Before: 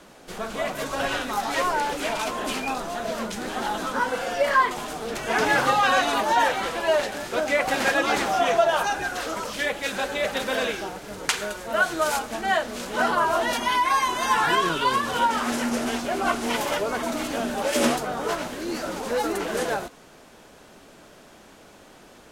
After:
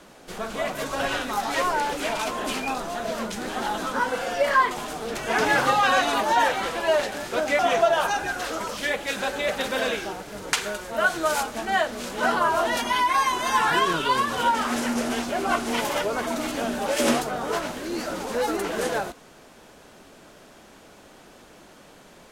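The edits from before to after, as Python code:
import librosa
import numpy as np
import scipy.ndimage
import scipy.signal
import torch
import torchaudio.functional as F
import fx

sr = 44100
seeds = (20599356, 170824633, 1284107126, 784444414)

y = fx.edit(x, sr, fx.cut(start_s=7.59, length_s=0.76), tone=tone)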